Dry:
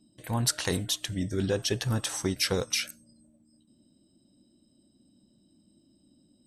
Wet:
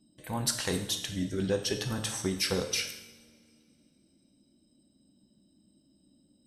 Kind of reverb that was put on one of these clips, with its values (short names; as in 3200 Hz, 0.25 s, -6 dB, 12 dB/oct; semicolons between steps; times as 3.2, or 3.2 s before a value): two-slope reverb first 0.82 s, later 2.8 s, from -22 dB, DRR 5 dB; gain -3 dB